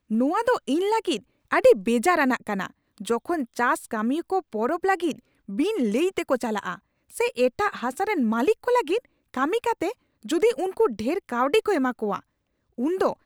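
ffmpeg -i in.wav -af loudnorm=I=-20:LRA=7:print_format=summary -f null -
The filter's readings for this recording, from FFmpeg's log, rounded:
Input Integrated:    -24.6 LUFS
Input True Peak:      -8.3 dBTP
Input LRA:             2.5 LU
Input Threshold:     -34.9 LUFS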